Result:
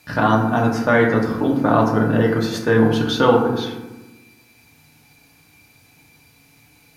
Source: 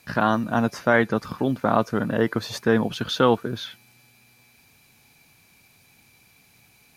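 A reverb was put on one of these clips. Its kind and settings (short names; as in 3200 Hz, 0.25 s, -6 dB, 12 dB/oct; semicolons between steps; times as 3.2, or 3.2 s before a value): FDN reverb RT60 1.1 s, low-frequency decay 1.45×, high-frequency decay 0.4×, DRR -0.5 dB; gain +1 dB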